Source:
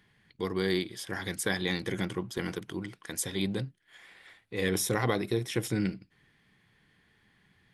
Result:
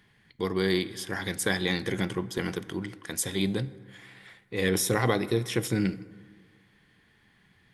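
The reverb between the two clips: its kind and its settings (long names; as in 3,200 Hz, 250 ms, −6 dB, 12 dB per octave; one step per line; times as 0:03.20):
dense smooth reverb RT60 1.8 s, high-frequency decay 0.45×, DRR 15.5 dB
level +3 dB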